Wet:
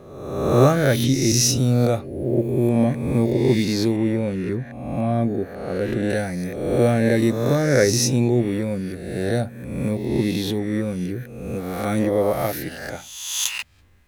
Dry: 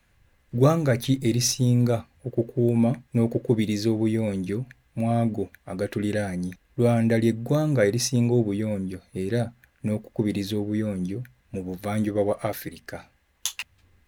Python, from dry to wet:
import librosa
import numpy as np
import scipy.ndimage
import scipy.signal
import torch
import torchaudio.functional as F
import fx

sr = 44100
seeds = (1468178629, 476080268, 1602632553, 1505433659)

y = fx.spec_swells(x, sr, rise_s=1.11)
y = fx.high_shelf(y, sr, hz=3400.0, db=-10.0, at=(3.96, 6.1))
y = y * librosa.db_to_amplitude(1.5)